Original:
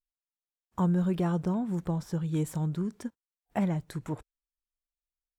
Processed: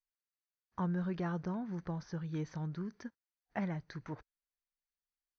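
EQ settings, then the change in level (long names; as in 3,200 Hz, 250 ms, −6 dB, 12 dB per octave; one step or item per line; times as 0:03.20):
Chebyshev low-pass with heavy ripple 6,300 Hz, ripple 9 dB
0.0 dB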